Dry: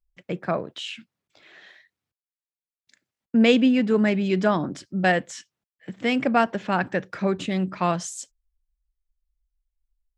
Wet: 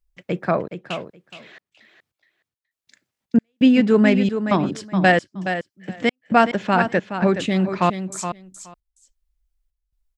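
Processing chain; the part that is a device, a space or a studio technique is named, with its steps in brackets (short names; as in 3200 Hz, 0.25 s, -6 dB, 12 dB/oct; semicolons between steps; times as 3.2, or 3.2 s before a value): trance gate with a delay (step gate "xxxxxx.." 133 bpm -60 dB; feedback echo 0.421 s, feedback 15%, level -9 dB); gain +5 dB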